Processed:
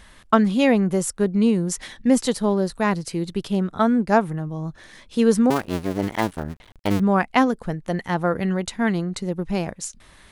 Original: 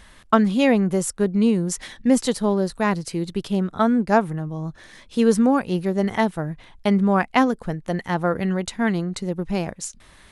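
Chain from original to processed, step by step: 5.5–7 cycle switcher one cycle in 2, muted

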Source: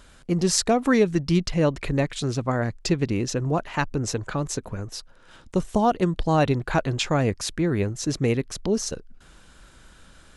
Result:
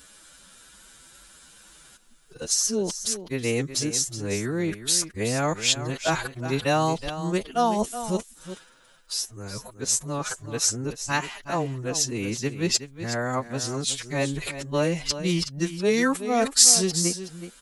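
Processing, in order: whole clip reversed; low shelf 220 Hz +9 dB; time stretch by phase-locked vocoder 1.7×; RIAA curve recording; on a send: echo 0.371 s -11.5 dB; on the sum: gain -2 dB

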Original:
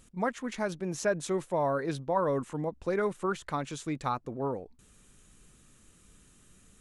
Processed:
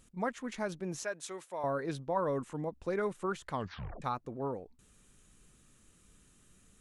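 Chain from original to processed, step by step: 1.03–1.64 HPF 1100 Hz 6 dB/oct; 3.51 tape stop 0.51 s; gain -4 dB

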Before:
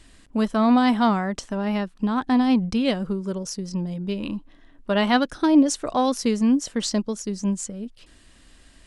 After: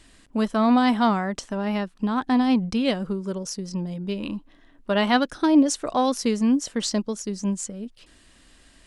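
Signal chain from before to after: low shelf 140 Hz -4.5 dB

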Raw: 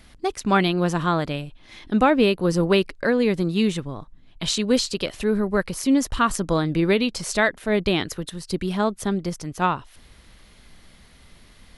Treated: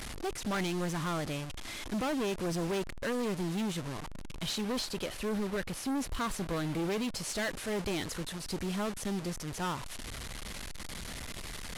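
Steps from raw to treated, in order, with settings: delta modulation 64 kbps, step -27.5 dBFS; 4.46–7.15 bell 6900 Hz -4.5 dB 1.1 oct; hard clip -22.5 dBFS, distortion -6 dB; gain -7.5 dB

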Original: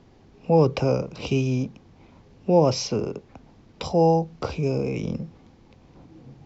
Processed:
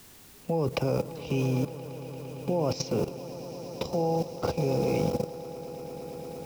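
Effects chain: swelling echo 0.114 s, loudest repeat 8, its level -16.5 dB; requantised 8-bit, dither triangular; level quantiser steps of 13 dB

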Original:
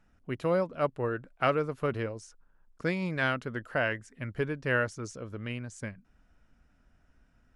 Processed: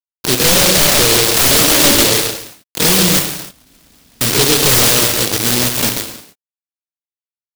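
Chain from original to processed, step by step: spectral swells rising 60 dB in 0.32 s; feedback echo 0.138 s, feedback 36%, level -7 dB; bit-crush 6-bit; 3.19–4.21 room tone; HPF 340 Hz 6 dB/oct; non-linear reverb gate 0.34 s falling, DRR 6.5 dB; sine folder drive 19 dB, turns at -8.5 dBFS; 1.64–2.05 comb 3.4 ms, depth 67%; noise-modulated delay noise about 4000 Hz, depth 0.36 ms; gain +1.5 dB

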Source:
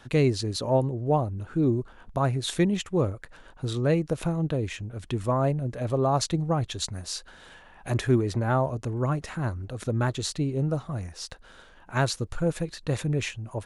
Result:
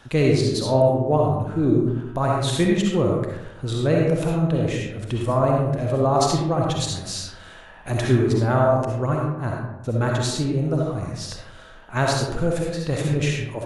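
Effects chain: 8.85–9.84 gate -28 dBFS, range -45 dB; reverb RT60 0.95 s, pre-delay 25 ms, DRR -1.5 dB; gain +2 dB

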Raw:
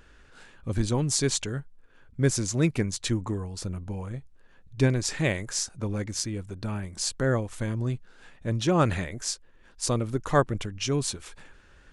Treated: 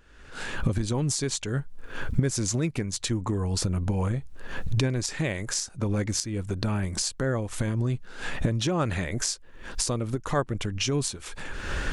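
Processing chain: recorder AGC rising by 47 dB/s; gain -4.5 dB

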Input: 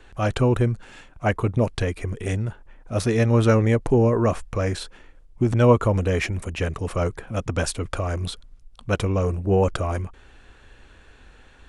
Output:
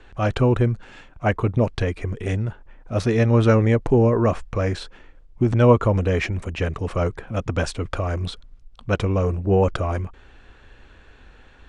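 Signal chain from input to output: air absorption 81 m; gain +1.5 dB

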